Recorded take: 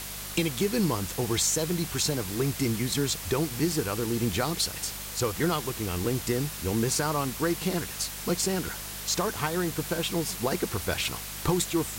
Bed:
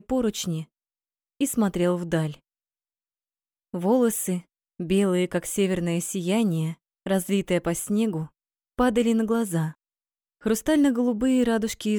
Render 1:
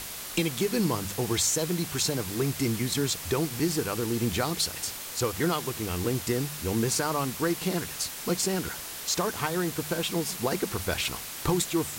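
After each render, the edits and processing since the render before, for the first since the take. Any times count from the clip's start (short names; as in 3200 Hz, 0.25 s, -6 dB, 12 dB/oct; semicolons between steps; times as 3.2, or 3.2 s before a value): de-hum 50 Hz, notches 4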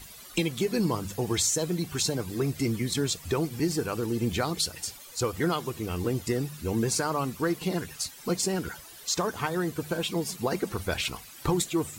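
denoiser 14 dB, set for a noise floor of -39 dBFS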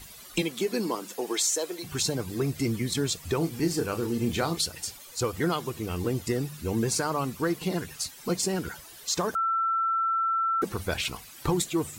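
0.41–1.83 HPF 190 Hz -> 390 Hz 24 dB/oct; 3.38–4.61 doubler 30 ms -8 dB; 9.35–10.62 bleep 1340 Hz -23 dBFS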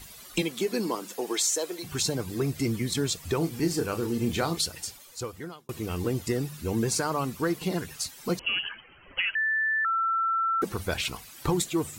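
4.71–5.69 fade out; 8.39–9.85 inverted band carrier 3100 Hz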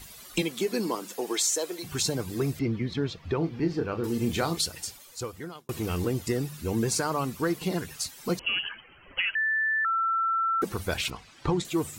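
2.59–4.04 air absorption 270 m; 5.55–6.05 sample leveller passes 1; 11.1–11.65 air absorption 120 m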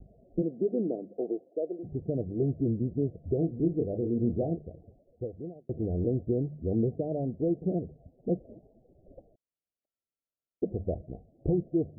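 steep low-pass 700 Hz 96 dB/oct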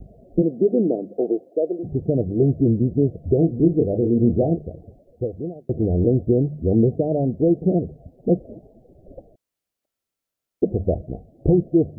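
gain +10.5 dB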